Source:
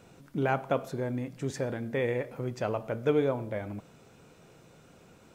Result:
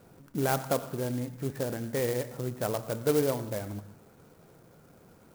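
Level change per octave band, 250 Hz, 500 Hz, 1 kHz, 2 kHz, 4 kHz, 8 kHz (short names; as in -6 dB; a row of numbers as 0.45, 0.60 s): 0.0, 0.0, -0.5, -2.5, +5.0, +11.0 dB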